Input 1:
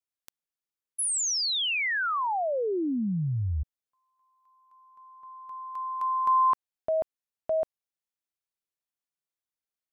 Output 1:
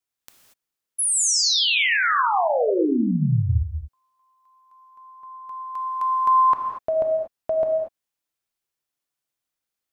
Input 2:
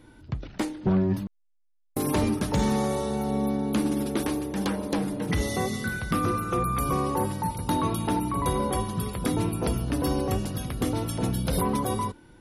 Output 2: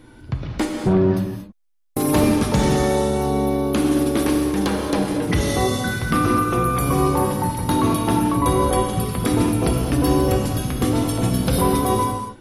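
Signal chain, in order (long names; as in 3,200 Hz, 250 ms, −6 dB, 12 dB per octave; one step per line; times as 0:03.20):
reverb whose tail is shaped and stops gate 260 ms flat, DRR 2 dB
level +5.5 dB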